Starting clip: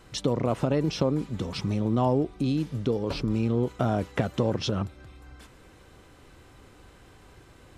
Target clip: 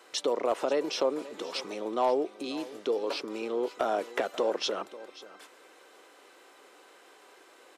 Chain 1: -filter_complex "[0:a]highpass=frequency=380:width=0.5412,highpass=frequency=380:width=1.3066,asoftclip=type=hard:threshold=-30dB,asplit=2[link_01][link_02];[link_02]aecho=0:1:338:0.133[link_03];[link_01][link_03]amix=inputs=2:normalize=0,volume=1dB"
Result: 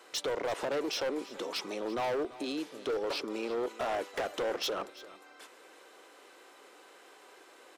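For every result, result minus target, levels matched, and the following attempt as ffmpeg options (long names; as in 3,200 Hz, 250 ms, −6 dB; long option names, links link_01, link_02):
hard clipping: distortion +21 dB; echo 198 ms early
-filter_complex "[0:a]highpass=frequency=380:width=0.5412,highpass=frequency=380:width=1.3066,asoftclip=type=hard:threshold=-18dB,asplit=2[link_01][link_02];[link_02]aecho=0:1:338:0.133[link_03];[link_01][link_03]amix=inputs=2:normalize=0,volume=1dB"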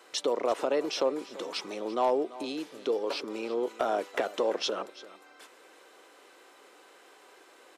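echo 198 ms early
-filter_complex "[0:a]highpass=frequency=380:width=0.5412,highpass=frequency=380:width=1.3066,asoftclip=type=hard:threshold=-18dB,asplit=2[link_01][link_02];[link_02]aecho=0:1:536:0.133[link_03];[link_01][link_03]amix=inputs=2:normalize=0,volume=1dB"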